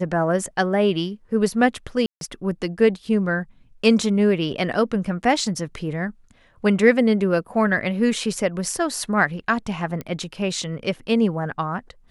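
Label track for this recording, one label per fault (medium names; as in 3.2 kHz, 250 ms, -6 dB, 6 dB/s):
2.060000	2.210000	dropout 152 ms
10.010000	10.010000	pop -17 dBFS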